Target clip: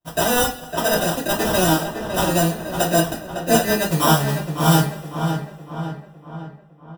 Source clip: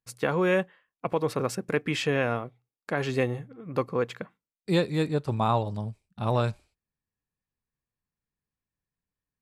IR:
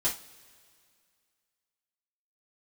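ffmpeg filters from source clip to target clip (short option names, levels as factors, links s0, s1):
-filter_complex "[0:a]asplit=2[s0][s1];[s1]aeval=exprs='(mod(14.1*val(0)+1,2)-1)/14.1':c=same,volume=0.266[s2];[s0][s2]amix=inputs=2:normalize=0,acrusher=samples=27:mix=1:aa=0.000001,asetrate=59535,aresample=44100,highshelf=f=8700:g=12,bandreject=f=50:t=h:w=6,bandreject=f=100:t=h:w=6,bandreject=f=150:t=h:w=6,asplit=2[s3][s4];[s4]adelay=556,lowpass=f=2700:p=1,volume=0.447,asplit=2[s5][s6];[s6]adelay=556,lowpass=f=2700:p=1,volume=0.53,asplit=2[s7][s8];[s8]adelay=556,lowpass=f=2700:p=1,volume=0.53,asplit=2[s9][s10];[s10]adelay=556,lowpass=f=2700:p=1,volume=0.53,asplit=2[s11][s12];[s12]adelay=556,lowpass=f=2700:p=1,volume=0.53,asplit=2[s13][s14];[s14]adelay=556,lowpass=f=2700:p=1,volume=0.53[s15];[s3][s5][s7][s9][s11][s13][s15]amix=inputs=7:normalize=0[s16];[1:a]atrim=start_sample=2205[s17];[s16][s17]afir=irnorm=-1:irlink=0,volume=0.891"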